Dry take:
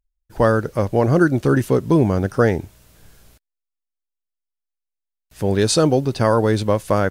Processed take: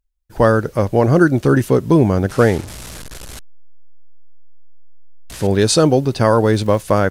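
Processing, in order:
0:02.29–0:05.47: linear delta modulator 64 kbit/s, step −29 dBFS
0:06.20–0:06.80: surface crackle 63 per second → 280 per second −34 dBFS
level +3 dB

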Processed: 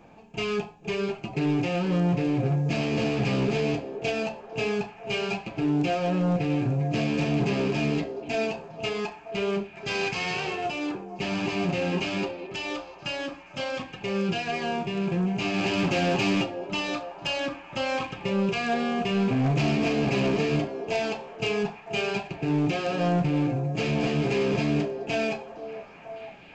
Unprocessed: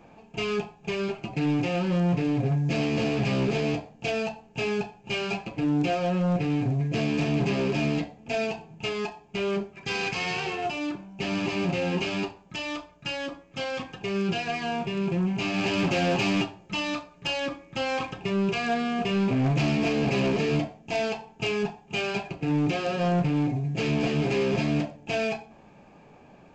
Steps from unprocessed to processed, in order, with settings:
echo through a band-pass that steps 477 ms, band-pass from 430 Hz, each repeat 0.7 octaves, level −6.5 dB

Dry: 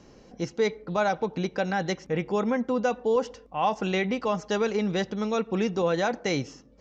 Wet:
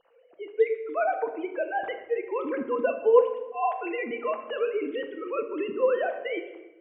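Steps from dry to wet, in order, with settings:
three sine waves on the formant tracks
convolution reverb RT60 1.1 s, pre-delay 6 ms, DRR 5.5 dB
level −1.5 dB

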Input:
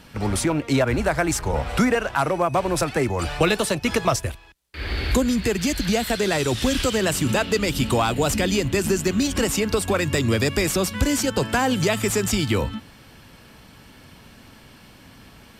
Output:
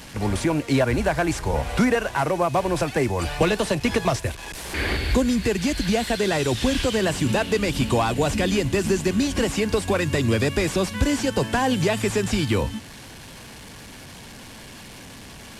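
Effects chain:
linear delta modulator 64 kbit/s, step −35 dBFS
notch filter 1,300 Hz, Q 9.8
0:03.42–0:04.97: multiband upward and downward compressor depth 70%

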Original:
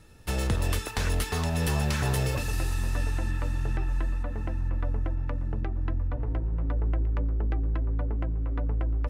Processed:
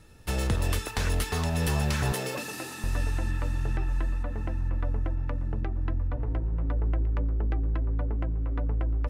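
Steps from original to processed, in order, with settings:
0:02.12–0:02.84: high-pass filter 180 Hz 24 dB per octave

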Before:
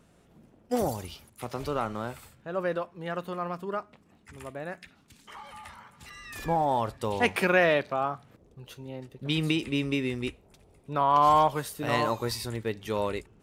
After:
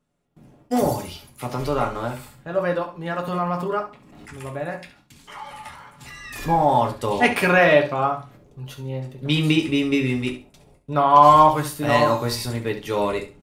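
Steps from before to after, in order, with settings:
noise gate with hold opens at −49 dBFS
repeating echo 68 ms, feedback 20%, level −12 dB
on a send at −1.5 dB: convolution reverb RT60 0.25 s, pre-delay 4 ms
0:03.27–0:04.43: on the sum: background raised ahead of every attack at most 40 dB per second
level +4.5 dB

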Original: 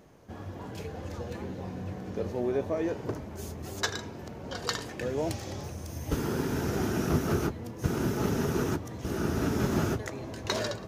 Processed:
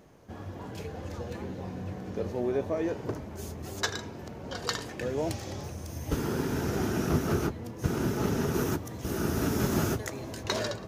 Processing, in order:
0:08.53–0:10.42: high-shelf EQ 10,000 Hz → 5,700 Hz +10 dB

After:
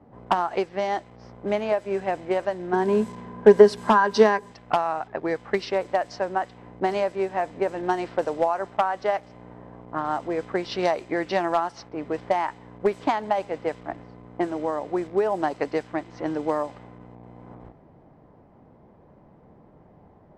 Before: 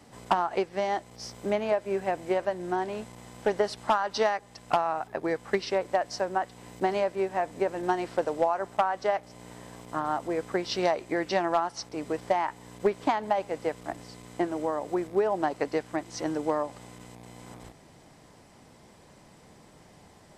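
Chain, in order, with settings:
0:02.73–0:04.52: hollow resonant body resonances 210/410/1,000/1,600 Hz, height 14 dB, ringing for 65 ms
low-pass that shuts in the quiet parts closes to 840 Hz, open at −21.5 dBFS
level +2.5 dB

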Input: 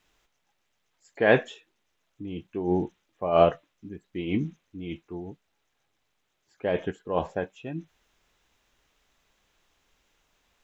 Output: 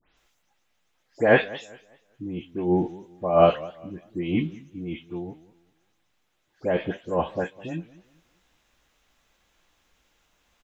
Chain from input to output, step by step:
every frequency bin delayed by itself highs late, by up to 169 ms
double-tracking delay 17 ms −12.5 dB
feedback echo with a swinging delay time 198 ms, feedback 31%, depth 180 cents, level −20 dB
level +2.5 dB

